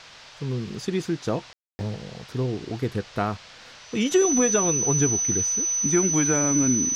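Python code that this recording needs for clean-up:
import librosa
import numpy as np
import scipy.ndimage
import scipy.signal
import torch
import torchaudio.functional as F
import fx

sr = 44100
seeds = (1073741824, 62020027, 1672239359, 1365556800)

y = fx.notch(x, sr, hz=6000.0, q=30.0)
y = fx.fix_ambience(y, sr, seeds[0], print_start_s=3.37, print_end_s=3.87, start_s=1.53, end_s=1.79)
y = fx.noise_reduce(y, sr, print_start_s=3.37, print_end_s=3.87, reduce_db=22.0)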